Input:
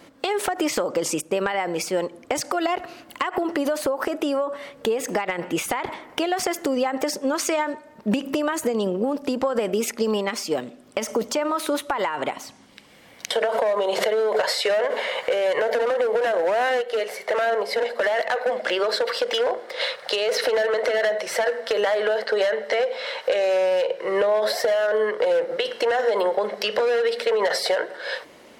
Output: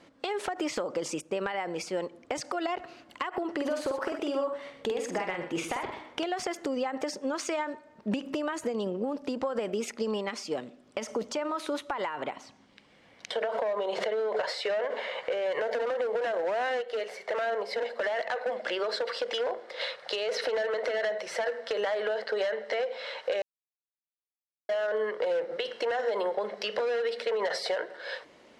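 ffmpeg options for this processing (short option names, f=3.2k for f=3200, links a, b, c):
-filter_complex "[0:a]asettb=1/sr,asplit=3[a][b][c];[a]atrim=end=3.554[d];[b]atrim=start=3.55:end=6.24,asetpts=PTS-STARTPTS,afade=t=in:d=0.004:c=qsin,afade=t=out:st=2.686:d=0.004:c=qsin,aecho=1:1:48|121:0.501|0.316,atrim=end_sample=118629[e];[c]atrim=start=6.236[f];[d][e]acrossfade=d=0.004:c1=hsin:c2=qsin[g];[g][f]acrossfade=d=0.004:c1=qsin:c2=hsin,asettb=1/sr,asplit=3[h][i][j];[h]atrim=end=12.134[k];[i]atrim=start=12.13:end=15.53,asetpts=PTS-STARTPTS,afade=t=in:d=0.004:c=qsin,afade=t=out:st=3.396:d=0.004:c=qsin,highshelf=f=5.6k:g=-6.5[l];[j]atrim=start=15.526[m];[k][l]acrossfade=d=0.004:c1=hsin:c2=qsin[n];[n][m]acrossfade=d=0.004:c1=qsin:c2=hsin,asplit=3[o][p][q];[o]atrim=end=23.42,asetpts=PTS-STARTPTS,afade=t=out:st=23.416:d=0.004:c=hsin[r];[p]atrim=start=23.42:end=24.69,asetpts=PTS-STARTPTS,volume=0[s];[q]atrim=start=24.69,asetpts=PTS-STARTPTS,afade=t=in:d=0.004:c=hsin[t];[r][s][t]concat=n=3:v=0:a=1,lowpass=7k,volume=-8dB"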